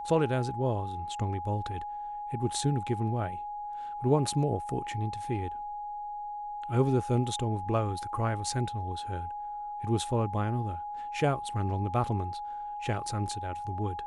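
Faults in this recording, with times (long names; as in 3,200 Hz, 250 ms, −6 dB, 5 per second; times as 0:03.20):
whistle 830 Hz −35 dBFS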